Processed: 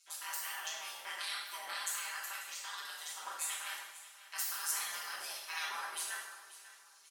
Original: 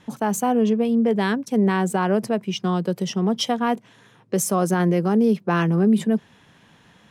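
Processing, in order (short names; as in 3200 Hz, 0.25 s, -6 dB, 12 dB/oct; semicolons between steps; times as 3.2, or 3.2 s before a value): spectral gate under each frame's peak -25 dB weak; dynamic EQ 2700 Hz, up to -8 dB, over -55 dBFS, Q 1.4; AM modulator 160 Hz, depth 85%; HPF 1200 Hz 12 dB/oct; high shelf 6100 Hz +4 dB; comb 5.1 ms; feedback echo 0.542 s, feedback 33%, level -16 dB; two-slope reverb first 0.88 s, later 2.3 s, DRR -5.5 dB; gain +1 dB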